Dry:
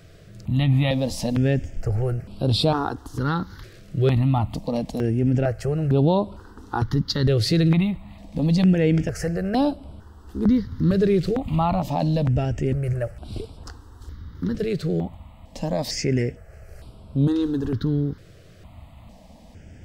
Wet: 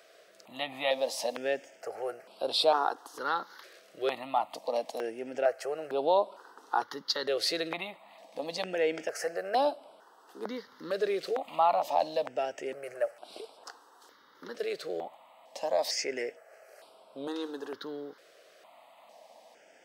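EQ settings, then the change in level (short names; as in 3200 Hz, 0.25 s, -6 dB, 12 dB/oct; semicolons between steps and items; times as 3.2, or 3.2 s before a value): ladder high-pass 470 Hz, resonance 30%; notch 7300 Hz, Q 21; +3.5 dB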